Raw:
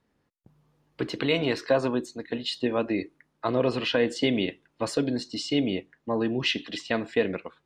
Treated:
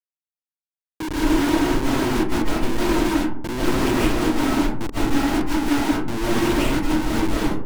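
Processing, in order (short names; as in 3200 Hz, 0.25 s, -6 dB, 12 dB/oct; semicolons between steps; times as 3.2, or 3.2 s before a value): ending faded out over 1.10 s; fifteen-band EQ 100 Hz +12 dB, 400 Hz +8 dB, 1000 Hz -6 dB; limiter -20 dBFS, peak gain reduction 12 dB; vowel filter u; AGC gain up to 14 dB; Schmitt trigger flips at -29 dBFS; digital reverb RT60 0.63 s, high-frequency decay 0.4×, pre-delay 0.115 s, DRR -7 dB; Doppler distortion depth 0.22 ms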